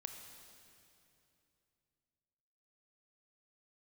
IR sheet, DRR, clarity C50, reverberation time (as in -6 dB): 4.5 dB, 5.5 dB, 2.8 s